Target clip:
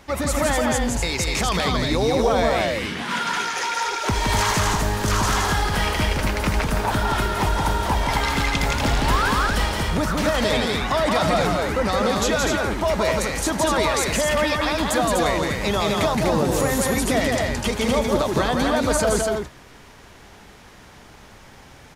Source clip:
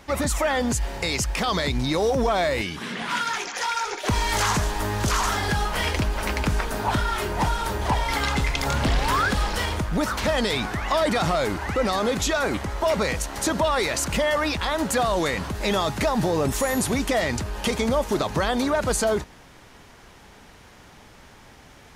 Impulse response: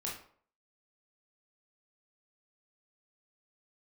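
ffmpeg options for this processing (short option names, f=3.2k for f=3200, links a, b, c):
-af "aecho=1:1:169.1|247.8:0.708|0.631"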